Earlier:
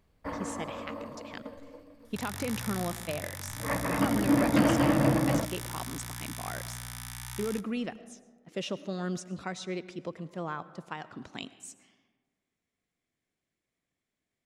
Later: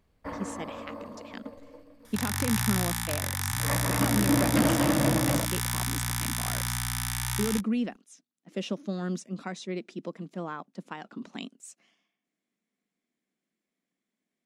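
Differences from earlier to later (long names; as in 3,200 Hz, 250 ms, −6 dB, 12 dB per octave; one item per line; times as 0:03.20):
speech: add low shelf with overshoot 140 Hz −13.5 dB, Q 3
second sound +10.5 dB
reverb: off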